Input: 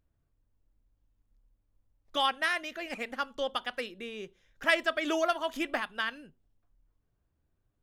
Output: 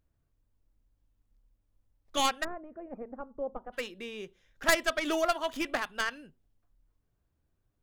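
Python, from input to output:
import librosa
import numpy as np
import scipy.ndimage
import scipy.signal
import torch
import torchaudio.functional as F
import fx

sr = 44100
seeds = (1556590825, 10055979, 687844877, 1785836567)

y = fx.tracing_dist(x, sr, depth_ms=0.21)
y = fx.bessel_lowpass(y, sr, hz=620.0, order=4, at=(2.43, 3.72), fade=0.02)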